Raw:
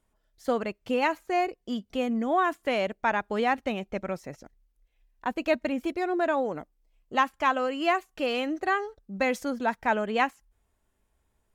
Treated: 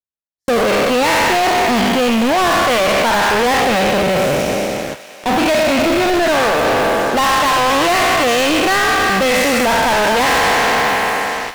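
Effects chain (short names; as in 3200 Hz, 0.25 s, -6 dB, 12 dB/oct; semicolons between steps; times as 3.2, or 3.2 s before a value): spectral trails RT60 2.67 s; HPF 50 Hz 24 dB/oct; gate with hold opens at -34 dBFS; 3.61–6 band shelf 1300 Hz -9.5 dB 1.3 oct; sample leveller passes 2; limiter -12 dBFS, peak gain reduction 5.5 dB; sample leveller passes 5; thinning echo 0.61 s, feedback 43%, high-pass 990 Hz, level -15 dB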